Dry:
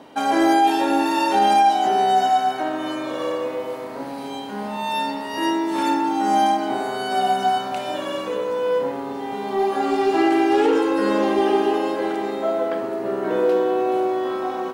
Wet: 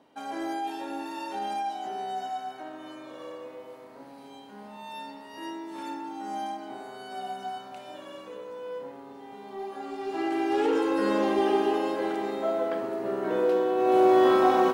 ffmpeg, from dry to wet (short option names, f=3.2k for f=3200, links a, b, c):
-af "volume=5dB,afade=t=in:st=9.98:d=0.95:silence=0.298538,afade=t=in:st=13.76:d=0.47:silence=0.298538"